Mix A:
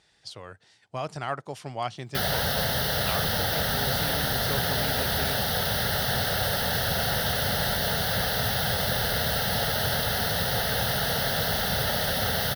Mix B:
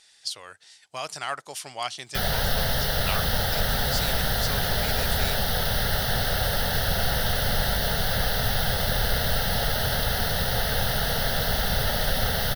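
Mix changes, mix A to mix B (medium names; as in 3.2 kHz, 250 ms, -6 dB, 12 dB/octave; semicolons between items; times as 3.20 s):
speech: add tilt EQ +4.5 dB/octave; master: remove high-pass 88 Hz 12 dB/octave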